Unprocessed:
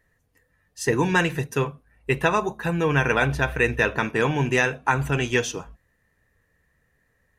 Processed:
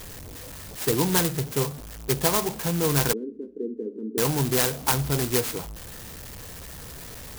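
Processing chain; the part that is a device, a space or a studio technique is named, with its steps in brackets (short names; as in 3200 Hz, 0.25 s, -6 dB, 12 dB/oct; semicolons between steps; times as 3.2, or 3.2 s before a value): early CD player with a faulty converter (zero-crossing step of -31.5 dBFS; clock jitter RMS 0.15 ms); 3.13–4.18 elliptic band-pass 220–440 Hz, stop band 40 dB; gain -2.5 dB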